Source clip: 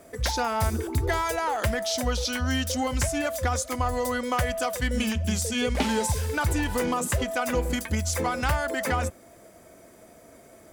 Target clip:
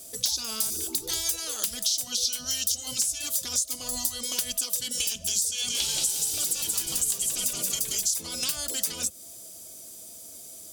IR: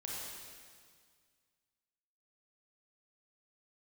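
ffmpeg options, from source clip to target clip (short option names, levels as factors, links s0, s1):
-filter_complex "[0:a]asettb=1/sr,asplit=3[s0][s1][s2];[s0]atrim=end=5.504[s3];[s1]atrim=start=5.5:end=8.06,asetpts=PTS-STARTPTS,afade=t=in:d=0.004:c=qsin,afade=t=out:st=2.556:d=0.004:c=qsin,asplit=7[s4][s5][s6][s7][s8][s9][s10];[s5]adelay=179,afreqshift=-55,volume=0.631[s11];[s6]adelay=358,afreqshift=-110,volume=0.292[s12];[s7]adelay=537,afreqshift=-165,volume=0.133[s13];[s8]adelay=716,afreqshift=-220,volume=0.0617[s14];[s9]adelay=895,afreqshift=-275,volume=0.0282[s15];[s10]adelay=1074,afreqshift=-330,volume=0.013[s16];[s4][s11][s12][s13][s14][s15][s16]amix=inputs=7:normalize=0,atrim=end_sample=112896[s17];[s2]atrim=start=8.056[s18];[s3][s17]acrossfade=d=0.004:c1=hsin:c2=qsin[s19];[s19][s18]acrossfade=d=0.004:c1=qsin:c2=hsin,afftfilt=real='re*lt(hypot(re,im),0.251)':imag='im*lt(hypot(re,im),0.251)':win_size=1024:overlap=0.75,lowshelf=f=430:g=5,aeval=exprs='(mod(4.73*val(0)+1,2)-1)/4.73':c=same,adynamicequalizer=threshold=0.00501:dfrequency=870:dqfactor=3.2:tfrequency=870:tqfactor=3.2:attack=5:release=100:ratio=0.375:range=3:mode=cutabove:tftype=bell,aexciter=amount=15.8:drive=3.7:freq=3000,acompressor=threshold=0.178:ratio=5,volume=0.335"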